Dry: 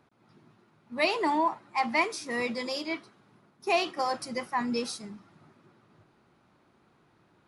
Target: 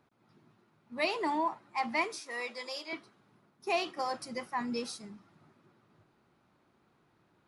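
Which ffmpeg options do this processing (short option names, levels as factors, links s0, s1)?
-filter_complex "[0:a]asettb=1/sr,asplit=3[s0][s1][s2];[s0]atrim=end=2.204[s3];[s1]atrim=start=2.2:end=2.93,asetpts=PTS-STARTPTS,afade=t=in:d=0.004:c=qsin,afade=t=out:st=0.726:d=0.004:c=qsin,highpass=550[s4];[s2]atrim=start=2.926[s5];[s3][s4]acrossfade=d=0.004:c1=hsin:c2=qsin[s6];[s6][s5]acrossfade=d=0.004:c1=qsin:c2=hsin,volume=0.562"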